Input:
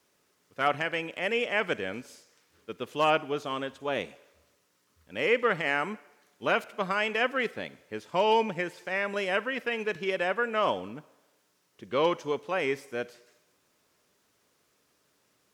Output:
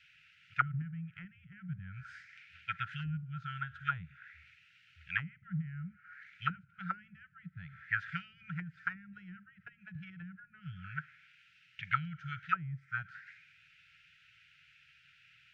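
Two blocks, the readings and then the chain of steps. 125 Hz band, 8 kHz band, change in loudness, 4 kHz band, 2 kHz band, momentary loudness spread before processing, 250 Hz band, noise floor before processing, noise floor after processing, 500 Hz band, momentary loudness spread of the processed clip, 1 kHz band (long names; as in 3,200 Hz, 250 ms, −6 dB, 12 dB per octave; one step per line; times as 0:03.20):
+4.5 dB, can't be measured, −10.5 dB, −17.0 dB, −8.5 dB, 15 LU, −9.0 dB, −71 dBFS, −66 dBFS, below −40 dB, 18 LU, −10.0 dB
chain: linear-phase brick-wall band-stop 170–1,300 Hz
envelope-controlled low-pass 250–2,700 Hz down, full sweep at −30 dBFS
level +6 dB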